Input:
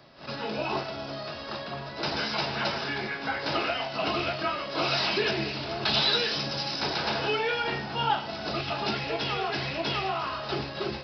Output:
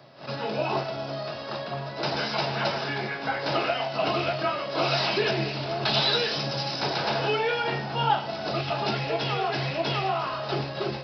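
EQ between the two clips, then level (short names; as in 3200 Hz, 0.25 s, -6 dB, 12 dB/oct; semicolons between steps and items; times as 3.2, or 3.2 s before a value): HPF 100 Hz; bell 130 Hz +9.5 dB 0.27 oct; bell 630 Hz +5 dB 1.1 oct; 0.0 dB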